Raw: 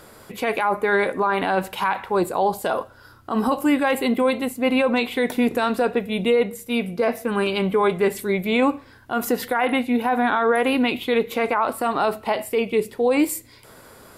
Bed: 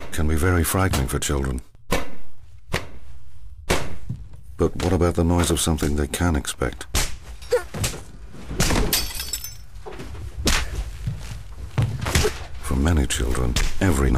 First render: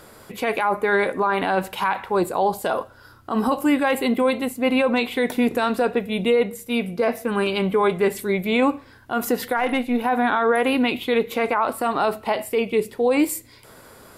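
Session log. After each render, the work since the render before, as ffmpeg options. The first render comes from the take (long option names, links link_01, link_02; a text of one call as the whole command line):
ffmpeg -i in.wav -filter_complex "[0:a]asplit=3[link_01][link_02][link_03];[link_01]afade=type=out:start_time=9.56:duration=0.02[link_04];[link_02]aeval=exprs='if(lt(val(0),0),0.708*val(0),val(0))':channel_layout=same,afade=type=in:start_time=9.56:duration=0.02,afade=type=out:start_time=10.02:duration=0.02[link_05];[link_03]afade=type=in:start_time=10.02:duration=0.02[link_06];[link_04][link_05][link_06]amix=inputs=3:normalize=0" out.wav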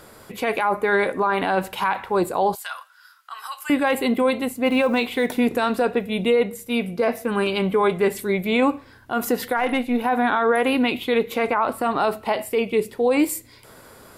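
ffmpeg -i in.wav -filter_complex "[0:a]asettb=1/sr,asplit=3[link_01][link_02][link_03];[link_01]atrim=end=2.554[link_04];[link_02]atrim=start=2.55:end=3.7,asetpts=PTS-STARTPTS,afade=type=in:duration=0.004:curve=qsin,afade=type=out:start_time=1.146:duration=0.004:curve=qsin,highpass=frequency=1300:width=0.5412,highpass=frequency=1300:width=1.3066[link_05];[link_03]atrim=start=3.696[link_06];[link_04][link_05]acrossfade=duration=0.004:curve1=hsin:curve2=qsin[link_07];[link_07][link_06]acrossfade=duration=0.004:curve1=qsin:curve2=hsin,asettb=1/sr,asplit=3[link_08][link_09][link_10];[link_08]atrim=end=4.664[link_11];[link_09]atrim=start=4.66:end=5.3,asetpts=PTS-STARTPTS,afade=type=in:duration=0.004:curve=qsin,afade=type=out:start_time=0.636:duration=0.004:curve=qsin,acrusher=bits=9:mode=log:mix=0:aa=0.000001[link_12];[link_10]atrim=start=5.296[link_13];[link_11][link_12]acrossfade=duration=0.004:curve1=hsin:curve2=qsin[link_14];[link_14][link_13]acrossfade=duration=0.004:curve1=qsin:curve2=hsin,asettb=1/sr,asplit=3[link_15][link_16][link_17];[link_15]atrim=end=11.474[link_18];[link_16]atrim=start=11.47:end=11.98,asetpts=PTS-STARTPTS,afade=type=in:duration=0.004:curve=qsin,afade=type=out:start_time=0.506:duration=0.004:curve=qsin,bass=frequency=250:gain=3,treble=frequency=4000:gain=-4[link_19];[link_17]atrim=start=11.976[link_20];[link_18][link_19]acrossfade=duration=0.004:curve1=hsin:curve2=qsin[link_21];[link_21][link_20]acrossfade=duration=0.004:curve1=qsin:curve2=hsin" out.wav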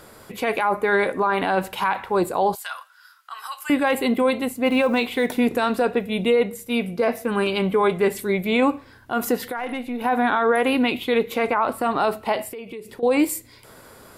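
ffmpeg -i in.wav -filter_complex "[0:a]asplit=3[link_01][link_02][link_03];[link_01]afade=type=out:start_time=9.37:duration=0.02[link_04];[link_02]acompressor=threshold=-29dB:ratio=2:attack=3.2:release=140:knee=1:detection=peak,afade=type=in:start_time=9.37:duration=0.02,afade=type=out:start_time=10:duration=0.02[link_05];[link_03]afade=type=in:start_time=10:duration=0.02[link_06];[link_04][link_05][link_06]amix=inputs=3:normalize=0,asettb=1/sr,asplit=3[link_07][link_08][link_09];[link_07]atrim=end=12.514[link_10];[link_08]atrim=start=12.51:end=13.03,asetpts=PTS-STARTPTS,afade=type=in:duration=0.004:curve=qsin,afade=type=out:start_time=0.516:duration=0.004:curve=qsin,acompressor=threshold=-32dB:ratio=8:attack=3.2:release=140:knee=1:detection=peak[link_11];[link_09]atrim=start=13.026[link_12];[link_10][link_11]acrossfade=duration=0.004:curve1=hsin:curve2=qsin[link_13];[link_13][link_12]acrossfade=duration=0.004:curve1=qsin:curve2=hsin" out.wav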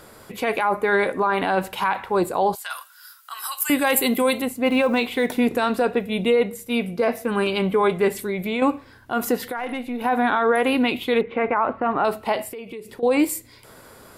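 ffmpeg -i in.wav -filter_complex "[0:a]asettb=1/sr,asplit=3[link_01][link_02][link_03];[link_01]atrim=end=2.704[link_04];[link_02]atrim=start=2.7:end=4.42,asetpts=PTS-STARTPTS,afade=type=in:duration=0.004:curve=qsin,afade=type=out:start_time=1.716:duration=0.004:curve=qsin,aemphasis=mode=production:type=75fm[link_05];[link_03]atrim=start=4.416[link_06];[link_04][link_05]acrossfade=duration=0.004:curve1=hsin:curve2=qsin[link_07];[link_07][link_06]acrossfade=duration=0.004:curve1=qsin:curve2=hsin,asettb=1/sr,asplit=3[link_08][link_09][link_10];[link_08]atrim=end=8.204[link_11];[link_09]atrim=start=8.2:end=8.62,asetpts=PTS-STARTPTS,afade=type=in:duration=0.004:curve=qsin,afade=type=out:start_time=0.416:duration=0.004:curve=qsin,acompressor=threshold=-22dB:ratio=3:attack=3.2:release=140:knee=1:detection=peak[link_12];[link_10]atrim=start=8.616[link_13];[link_11][link_12]acrossfade=duration=0.004:curve1=hsin:curve2=qsin[link_14];[link_14][link_13]acrossfade=duration=0.004:curve1=qsin:curve2=hsin,asettb=1/sr,asplit=3[link_15][link_16][link_17];[link_15]atrim=end=11.214[link_18];[link_16]atrim=start=11.21:end=12.05,asetpts=PTS-STARTPTS,afade=type=in:duration=0.004:curve=qsin,afade=type=out:start_time=0.836:duration=0.004:curve=qsin,lowpass=frequency=2400:width=0.5412,lowpass=frequency=2400:width=1.3066[link_19];[link_17]atrim=start=12.046[link_20];[link_18][link_19]acrossfade=duration=0.004:curve1=hsin:curve2=qsin[link_21];[link_21][link_20]acrossfade=duration=0.004:curve1=qsin:curve2=hsin" out.wav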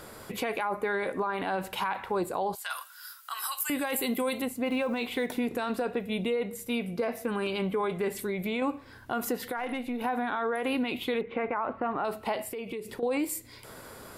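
ffmpeg -i in.wav -af "alimiter=limit=-13dB:level=0:latency=1:release=23,acompressor=threshold=-33dB:ratio=2" out.wav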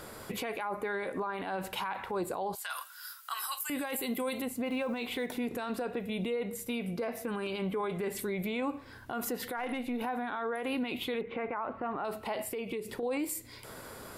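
ffmpeg -i in.wav -af "alimiter=level_in=2dB:limit=-24dB:level=0:latency=1:release=73,volume=-2dB" out.wav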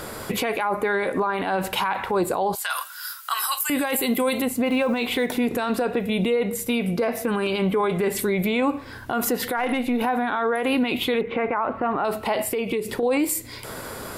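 ffmpeg -i in.wav -af "volume=11.5dB" out.wav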